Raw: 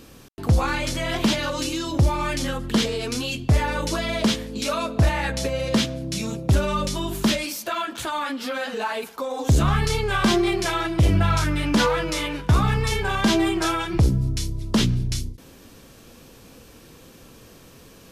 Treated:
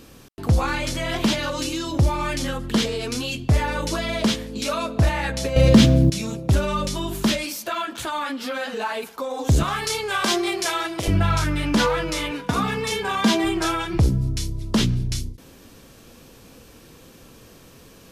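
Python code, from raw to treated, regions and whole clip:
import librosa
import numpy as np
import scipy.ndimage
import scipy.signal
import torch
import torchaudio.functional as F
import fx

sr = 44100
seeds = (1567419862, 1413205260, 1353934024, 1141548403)

y = fx.chain(x, sr, fx.low_shelf(hz=320.0, db=12.0),
    fx.quant_float(bits=6),
    fx.env_flatten(amount_pct=50), at=(5.56, 6.1))
y = fx.chain(y, sr, fx.highpass(hz=130.0, slope=6),
    fx.bass_treble(bass_db=-13, treble_db=5), at=(9.63, 11.08))
y = fx.chain(y, sr, fx.highpass(hz=160.0, slope=12),
    fx.comb(ms=4.2, depth=0.48), at=(12.31, 13.44))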